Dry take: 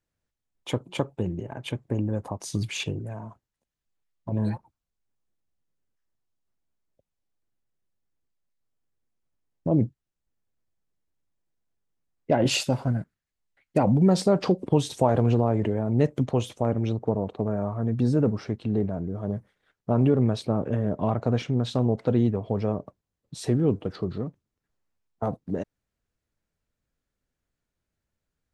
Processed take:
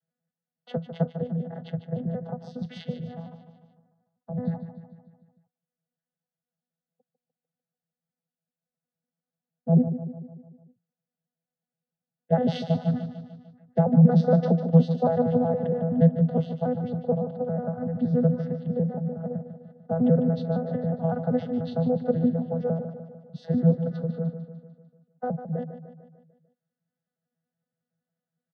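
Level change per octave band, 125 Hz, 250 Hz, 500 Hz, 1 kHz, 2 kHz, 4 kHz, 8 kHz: +1.0 dB, +1.0 dB, 0.0 dB, −1.5 dB, can't be measured, below −10 dB, below −25 dB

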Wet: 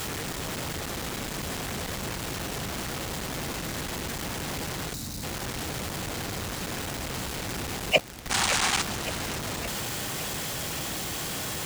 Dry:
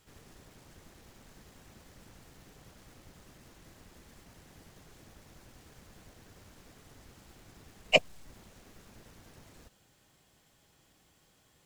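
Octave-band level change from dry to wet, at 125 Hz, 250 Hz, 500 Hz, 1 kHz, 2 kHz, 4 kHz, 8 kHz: +19.0, +17.5, +6.0, +14.0, +9.0, +9.0, +23.5 decibels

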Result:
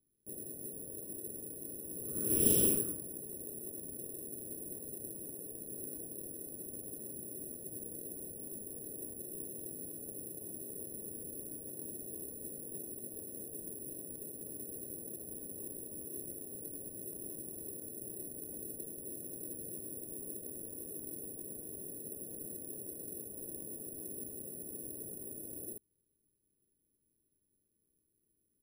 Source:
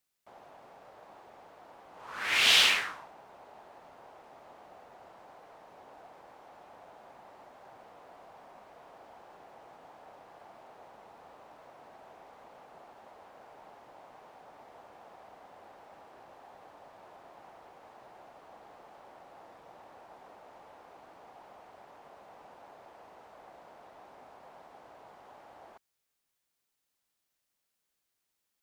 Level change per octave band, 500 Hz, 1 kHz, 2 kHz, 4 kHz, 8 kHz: +4.5 dB, −23.0 dB, below −30 dB, below −25 dB, +7.5 dB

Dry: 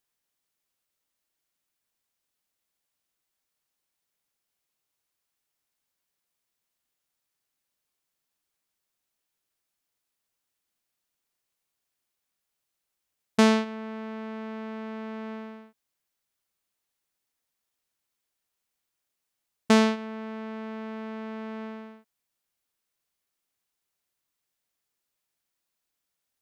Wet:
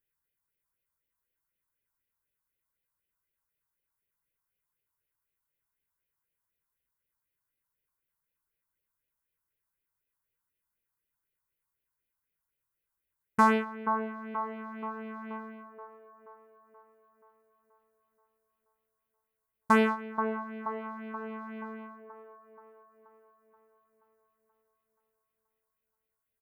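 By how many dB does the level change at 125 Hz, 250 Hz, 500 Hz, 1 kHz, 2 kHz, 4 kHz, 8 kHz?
−5.5, −5.5, −3.5, +4.5, +0.5, −12.5, −11.5 decibels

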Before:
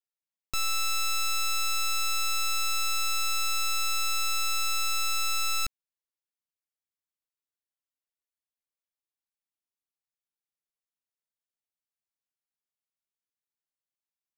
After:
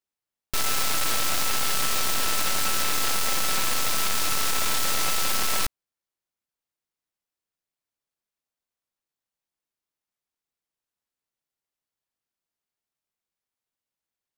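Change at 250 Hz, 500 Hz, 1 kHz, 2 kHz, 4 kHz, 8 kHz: +19.0, +16.0, +3.0, +2.5, +3.0, +4.5 decibels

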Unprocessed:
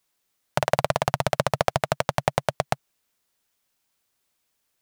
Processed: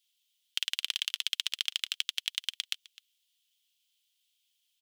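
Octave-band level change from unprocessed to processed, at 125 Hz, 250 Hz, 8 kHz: below −40 dB, below −40 dB, −3.0 dB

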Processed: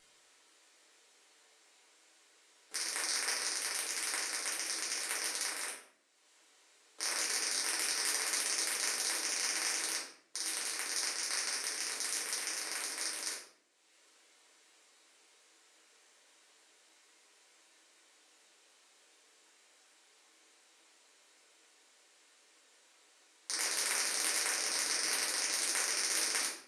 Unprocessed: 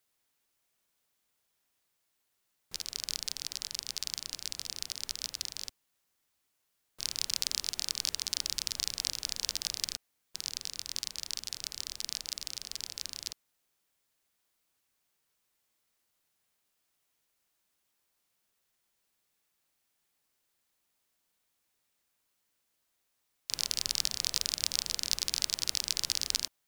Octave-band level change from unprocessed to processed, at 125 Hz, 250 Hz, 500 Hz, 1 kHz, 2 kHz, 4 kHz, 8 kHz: below −15 dB, +3.5 dB, +9.0 dB, +10.5 dB, +10.0 dB, −3.5 dB, +2.5 dB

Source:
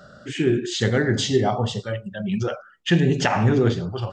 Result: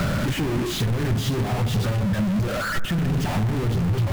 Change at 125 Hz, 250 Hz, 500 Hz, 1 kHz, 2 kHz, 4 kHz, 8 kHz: +1.5, −1.5, −6.5, −3.0, −2.0, −3.0, −2.0 decibels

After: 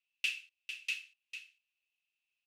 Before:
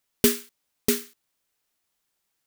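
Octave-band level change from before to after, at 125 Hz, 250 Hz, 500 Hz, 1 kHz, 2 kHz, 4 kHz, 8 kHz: below −40 dB, below −40 dB, below −40 dB, below −25 dB, 0.0 dB, −7.0 dB, −22.0 dB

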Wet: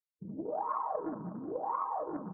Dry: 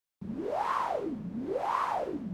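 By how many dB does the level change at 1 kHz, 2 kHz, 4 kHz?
−3.5 dB, −16.5 dB, below −35 dB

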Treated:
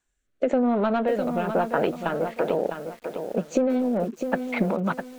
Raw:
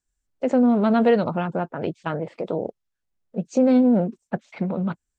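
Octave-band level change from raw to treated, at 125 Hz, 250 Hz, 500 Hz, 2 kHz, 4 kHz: −4.5, −5.0, −0.5, +2.5, −0.5 decibels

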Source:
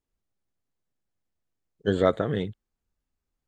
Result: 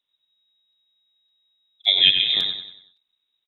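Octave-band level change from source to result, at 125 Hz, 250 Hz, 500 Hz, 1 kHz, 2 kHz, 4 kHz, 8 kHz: below −15 dB, −16.5 dB, −19.0 dB, below −10 dB, +10.0 dB, +28.5 dB, can't be measured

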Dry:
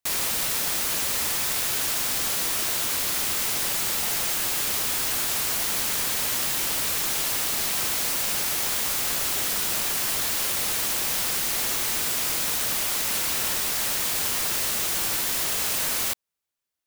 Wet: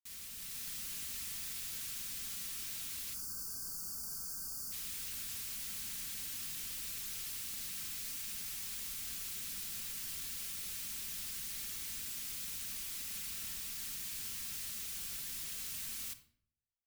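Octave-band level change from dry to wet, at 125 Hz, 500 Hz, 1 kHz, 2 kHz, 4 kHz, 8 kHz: −16.0, −29.0, −27.0, −20.5, −17.5, −16.5 decibels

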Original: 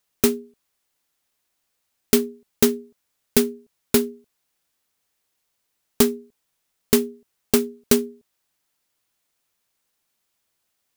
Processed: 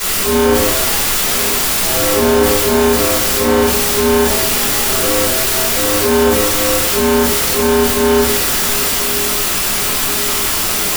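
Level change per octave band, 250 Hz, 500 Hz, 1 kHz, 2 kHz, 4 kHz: +7.5, +12.0, +23.0, +19.5, +17.5 decibels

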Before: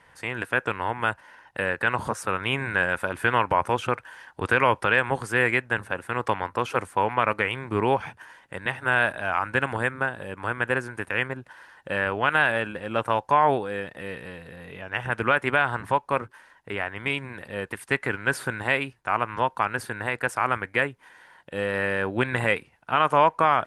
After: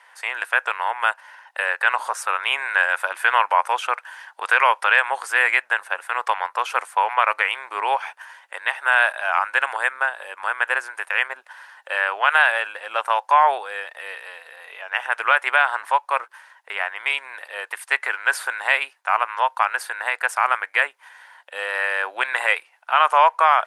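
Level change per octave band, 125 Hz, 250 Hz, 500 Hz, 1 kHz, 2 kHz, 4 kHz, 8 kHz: below −40 dB, below −20 dB, −3.0 dB, +5.0 dB, +5.5 dB, +5.5 dB, +5.5 dB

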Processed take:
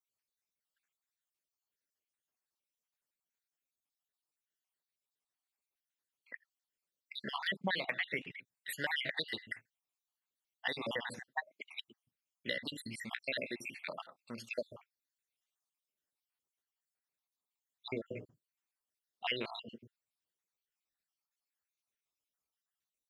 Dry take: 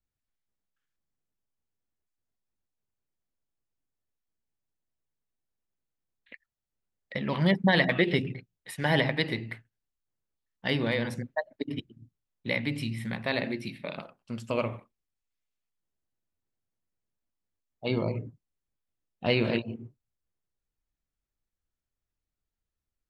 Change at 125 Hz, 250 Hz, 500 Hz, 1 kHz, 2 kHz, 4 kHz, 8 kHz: −21.5, −17.0, −13.0, −9.0, −7.0, −5.5, −1.5 decibels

